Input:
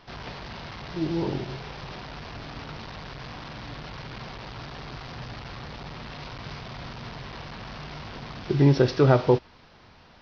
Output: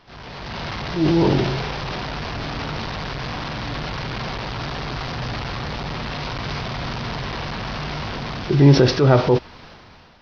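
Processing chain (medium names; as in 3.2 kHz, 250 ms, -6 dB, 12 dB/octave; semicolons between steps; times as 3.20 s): transient shaper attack -5 dB, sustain +6 dB; level rider gain up to 11 dB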